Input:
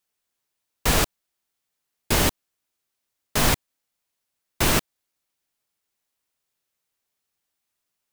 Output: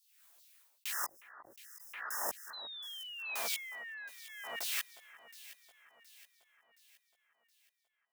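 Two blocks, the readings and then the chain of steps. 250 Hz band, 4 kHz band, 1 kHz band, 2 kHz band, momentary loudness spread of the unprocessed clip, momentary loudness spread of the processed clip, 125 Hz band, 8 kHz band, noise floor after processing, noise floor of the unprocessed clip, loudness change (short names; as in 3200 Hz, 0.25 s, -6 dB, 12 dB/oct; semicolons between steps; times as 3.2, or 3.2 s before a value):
-34.5 dB, -12.5 dB, -15.5 dB, -11.0 dB, 6 LU, 20 LU, under -40 dB, -13.5 dB, -81 dBFS, -81 dBFS, -16.0 dB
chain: octaver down 1 oct, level -6 dB; HPF 46 Hz; gate -53 dBFS, range -26 dB; spectral delete 0.91–3.14, 2000–5000 Hz; high shelf 9700 Hz +10 dB; reverse; compressor 12:1, threshold -31 dBFS, peak gain reduction 17.5 dB; reverse; LFO high-pass saw down 2.6 Hz 510–4800 Hz; chorus voices 6, 1.1 Hz, delay 16 ms, depth 3 ms; painted sound fall, 2.53–4.09, 1600–4100 Hz -46 dBFS; on a send: echo with dull and thin repeats by turns 0.36 s, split 1800 Hz, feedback 69%, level -13 dB; on the sum: backwards sustainer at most 40 dB/s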